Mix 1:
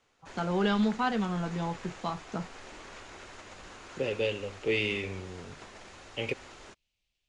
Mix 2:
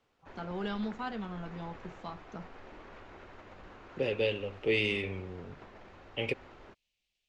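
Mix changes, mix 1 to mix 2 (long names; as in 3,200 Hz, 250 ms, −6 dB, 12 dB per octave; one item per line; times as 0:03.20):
first voice −9.0 dB
background: add head-to-tape spacing loss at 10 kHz 33 dB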